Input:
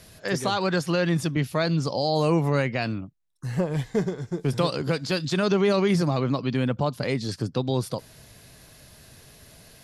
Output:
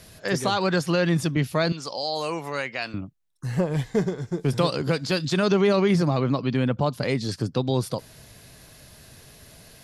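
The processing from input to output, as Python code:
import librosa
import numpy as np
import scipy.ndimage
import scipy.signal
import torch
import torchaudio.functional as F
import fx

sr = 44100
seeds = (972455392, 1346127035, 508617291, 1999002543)

y = fx.highpass(x, sr, hz=1100.0, slope=6, at=(1.72, 2.94))
y = fx.high_shelf(y, sr, hz=6100.0, db=-6.5, at=(5.67, 6.83))
y = y * librosa.db_to_amplitude(1.5)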